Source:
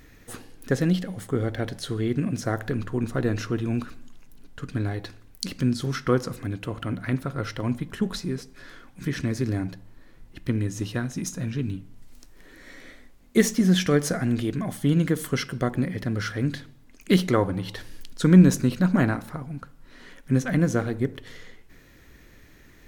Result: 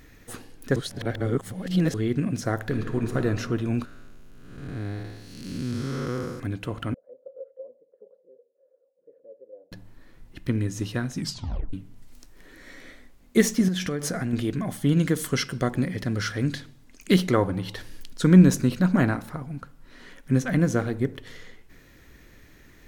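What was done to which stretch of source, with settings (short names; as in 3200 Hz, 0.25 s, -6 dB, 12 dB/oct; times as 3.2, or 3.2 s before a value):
0.76–1.94 reverse
2.64–3.17 reverb throw, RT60 2.2 s, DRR 5 dB
3.85–6.4 time blur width 0.352 s
6.94–9.72 Butterworth band-pass 520 Hz, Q 6.9
11.18 tape stop 0.55 s
13.68–14.33 compressor 12:1, threshold -23 dBFS
14.97–17.13 bell 6400 Hz +4.5 dB 1.9 oct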